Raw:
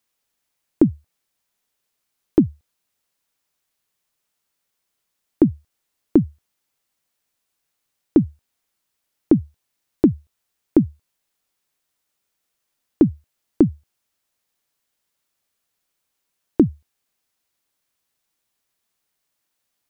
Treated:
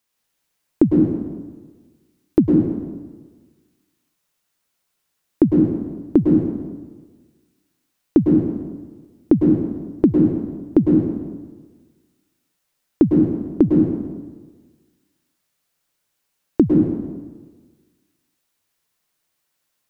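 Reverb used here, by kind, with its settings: plate-style reverb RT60 1.4 s, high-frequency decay 0.75×, pre-delay 95 ms, DRR -1 dB

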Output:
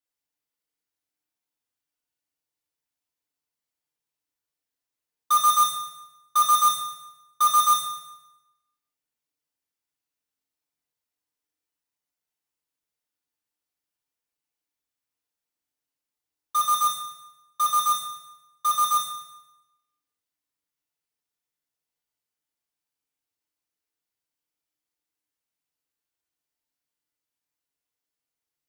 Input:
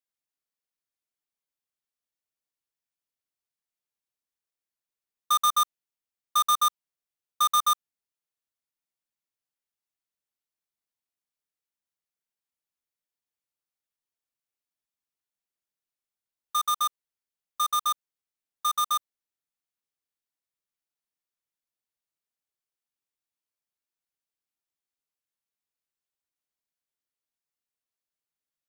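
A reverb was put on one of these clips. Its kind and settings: FDN reverb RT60 1 s, low-frequency decay 1.05×, high-frequency decay 0.85×, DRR -2.5 dB; gain -1 dB

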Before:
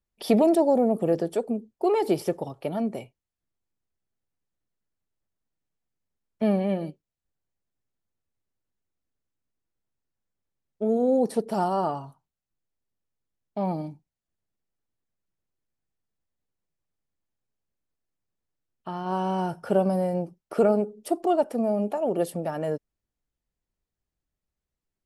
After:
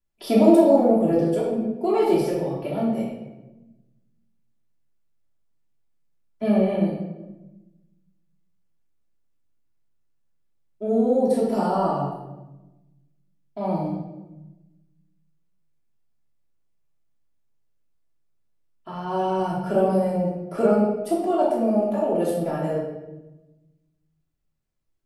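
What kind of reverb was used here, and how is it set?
shoebox room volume 480 m³, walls mixed, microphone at 3 m; gain -5 dB

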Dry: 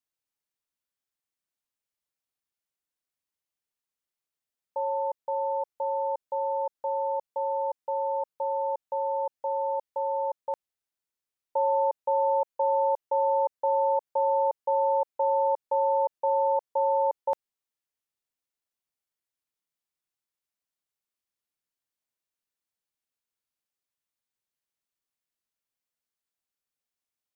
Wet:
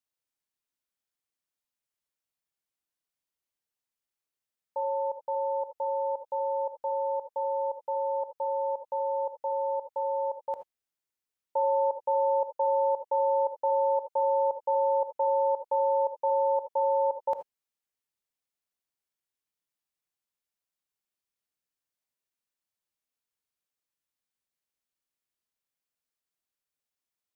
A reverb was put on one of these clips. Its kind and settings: non-linear reverb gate 0.1 s rising, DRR 9.5 dB; gain -1.5 dB

